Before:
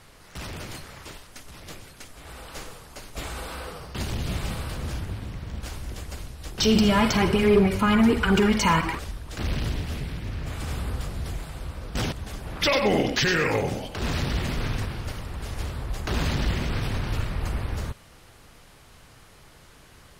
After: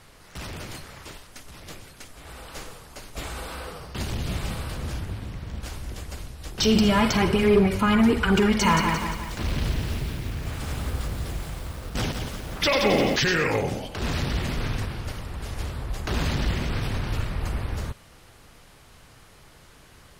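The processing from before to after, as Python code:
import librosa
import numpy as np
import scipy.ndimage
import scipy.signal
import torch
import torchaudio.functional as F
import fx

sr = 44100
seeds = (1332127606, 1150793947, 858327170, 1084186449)

y = fx.echo_crushed(x, sr, ms=174, feedback_pct=55, bits=7, wet_db=-5, at=(8.44, 13.16))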